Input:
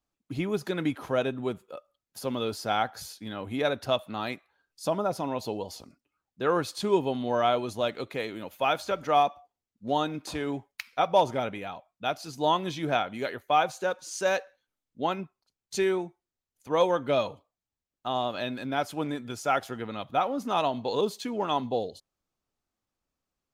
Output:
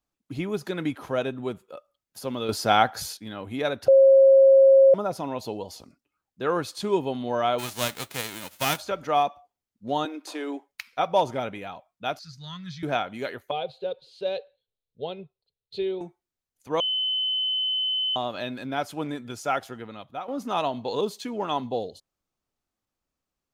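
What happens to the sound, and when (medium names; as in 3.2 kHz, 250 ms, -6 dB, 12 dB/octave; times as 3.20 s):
2.49–3.17 s: gain +7.5 dB
3.88–4.94 s: bleep 540 Hz -11 dBFS
7.58–8.76 s: formants flattened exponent 0.3
10.05–10.69 s: elliptic high-pass 280 Hz
12.19–12.83 s: FFT filter 180 Hz 0 dB, 300 Hz -30 dB, 860 Hz -29 dB, 1.3 kHz -6 dB, 1.9 kHz -4 dB, 2.8 kHz -13 dB, 4.4 kHz +1 dB, 9.6 kHz -18 dB
13.51–16.01 s: FFT filter 140 Hz 0 dB, 300 Hz -17 dB, 430 Hz +5 dB, 1.1 kHz -18 dB, 1.8 kHz -18 dB, 2.8 kHz -5 dB, 4.1 kHz +2 dB, 6 kHz -30 dB, 9.3 kHz -26 dB
16.80–18.16 s: bleep 3.04 kHz -23 dBFS
19.47–20.28 s: fade out, to -11.5 dB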